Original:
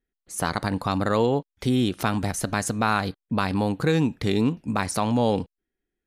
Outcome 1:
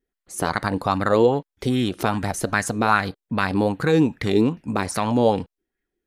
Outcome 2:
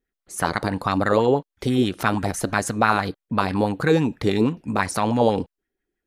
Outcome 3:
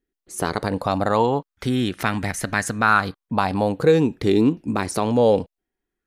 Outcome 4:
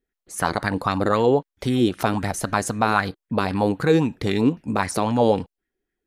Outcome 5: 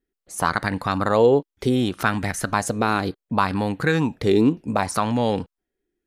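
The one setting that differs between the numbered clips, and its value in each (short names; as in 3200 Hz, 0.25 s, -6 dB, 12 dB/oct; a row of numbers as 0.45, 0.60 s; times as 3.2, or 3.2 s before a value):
LFO bell, rate: 2.5, 6.1, 0.22, 3.8, 0.67 Hz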